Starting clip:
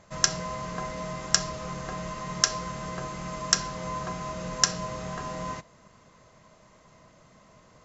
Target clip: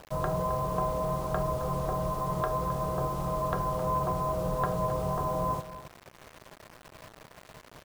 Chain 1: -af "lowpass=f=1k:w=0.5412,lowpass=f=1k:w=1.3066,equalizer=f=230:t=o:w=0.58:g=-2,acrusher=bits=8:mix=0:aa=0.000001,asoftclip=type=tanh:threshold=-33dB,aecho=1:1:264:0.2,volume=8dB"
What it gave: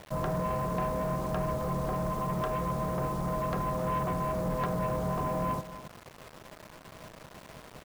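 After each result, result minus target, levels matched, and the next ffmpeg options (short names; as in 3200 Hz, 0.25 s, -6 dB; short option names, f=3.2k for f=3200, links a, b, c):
soft clip: distortion +14 dB; 250 Hz band +3.5 dB
-af "lowpass=f=1k:w=0.5412,lowpass=f=1k:w=1.3066,equalizer=f=230:t=o:w=0.58:g=-2,acrusher=bits=8:mix=0:aa=0.000001,asoftclip=type=tanh:threshold=-23dB,aecho=1:1:264:0.2,volume=8dB"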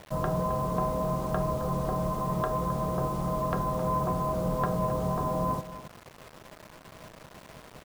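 250 Hz band +3.5 dB
-af "lowpass=f=1k:w=0.5412,lowpass=f=1k:w=1.3066,equalizer=f=230:t=o:w=0.58:g=-13,acrusher=bits=8:mix=0:aa=0.000001,asoftclip=type=tanh:threshold=-23dB,aecho=1:1:264:0.2,volume=8dB"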